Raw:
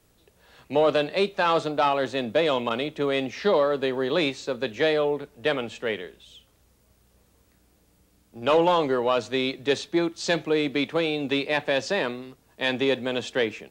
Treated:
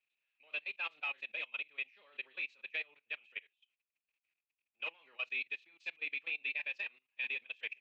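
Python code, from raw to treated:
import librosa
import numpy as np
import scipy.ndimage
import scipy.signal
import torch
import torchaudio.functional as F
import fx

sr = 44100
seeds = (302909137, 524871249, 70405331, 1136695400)

y = fx.bandpass_q(x, sr, hz=2500.0, q=11.0)
y = fx.echo_multitap(y, sr, ms=(53, 54), db=(-17.5, -8.0))
y = fx.level_steps(y, sr, step_db=21)
y = fx.stretch_vocoder(y, sr, factor=0.57)
y = fx.upward_expand(y, sr, threshold_db=-56.0, expansion=1.5)
y = y * 10.0 ** (7.0 / 20.0)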